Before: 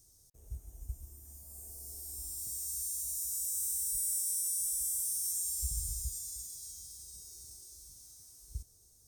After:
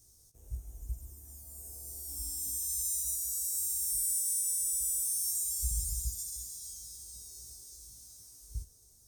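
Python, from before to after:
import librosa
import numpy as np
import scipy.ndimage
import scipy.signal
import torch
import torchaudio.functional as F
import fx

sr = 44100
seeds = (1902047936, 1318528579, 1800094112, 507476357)

y = fx.comb(x, sr, ms=3.6, depth=0.75, at=(2.08, 3.15))
y = fx.room_early_taps(y, sr, ms=(18, 69), db=(-3.0, -13.0))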